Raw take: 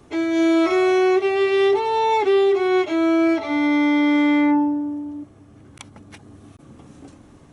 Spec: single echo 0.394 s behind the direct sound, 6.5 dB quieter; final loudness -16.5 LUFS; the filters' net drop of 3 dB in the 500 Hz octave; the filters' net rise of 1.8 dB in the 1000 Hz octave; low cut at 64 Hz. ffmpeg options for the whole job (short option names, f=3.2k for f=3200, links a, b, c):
-af "highpass=64,equalizer=f=500:t=o:g=-5.5,equalizer=f=1k:t=o:g=4,aecho=1:1:394:0.473,volume=3dB"